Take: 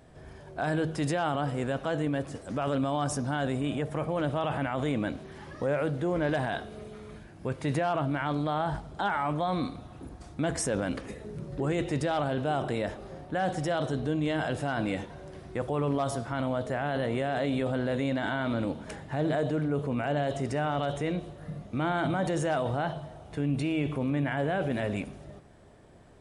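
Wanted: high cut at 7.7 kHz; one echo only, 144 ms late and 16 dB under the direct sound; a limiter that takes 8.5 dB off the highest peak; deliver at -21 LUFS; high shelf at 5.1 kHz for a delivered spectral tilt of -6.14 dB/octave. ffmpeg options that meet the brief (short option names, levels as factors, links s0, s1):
-af "lowpass=7700,highshelf=f=5100:g=-4.5,alimiter=level_in=1.5:limit=0.0631:level=0:latency=1,volume=0.668,aecho=1:1:144:0.158,volume=6.31"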